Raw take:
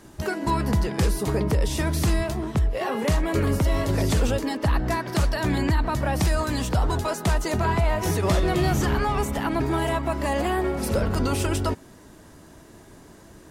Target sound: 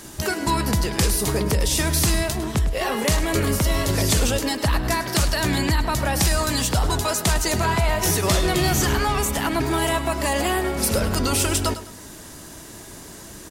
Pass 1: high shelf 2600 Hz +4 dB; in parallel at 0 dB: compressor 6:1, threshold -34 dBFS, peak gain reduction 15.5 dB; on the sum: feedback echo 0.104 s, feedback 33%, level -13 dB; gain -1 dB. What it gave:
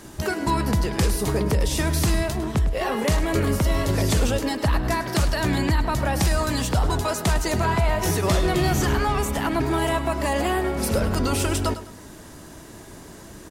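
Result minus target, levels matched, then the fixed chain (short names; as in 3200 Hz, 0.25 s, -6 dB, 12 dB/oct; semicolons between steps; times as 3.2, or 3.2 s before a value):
4000 Hz band -3.5 dB
high shelf 2600 Hz +12 dB; in parallel at 0 dB: compressor 6:1, threshold -34 dBFS, peak gain reduction 16.5 dB; on the sum: feedback echo 0.104 s, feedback 33%, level -13 dB; gain -1 dB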